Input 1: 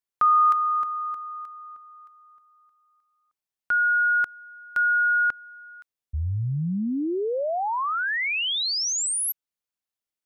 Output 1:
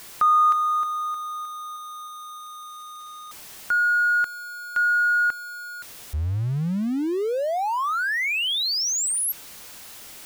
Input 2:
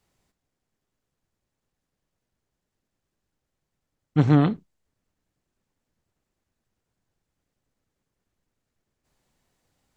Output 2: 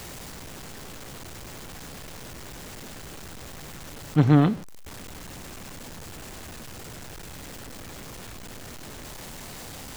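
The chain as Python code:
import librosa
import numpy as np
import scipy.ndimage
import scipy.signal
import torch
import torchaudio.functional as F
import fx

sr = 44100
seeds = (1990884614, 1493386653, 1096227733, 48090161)

y = x + 0.5 * 10.0 ** (-34.0 / 20.0) * np.sign(x)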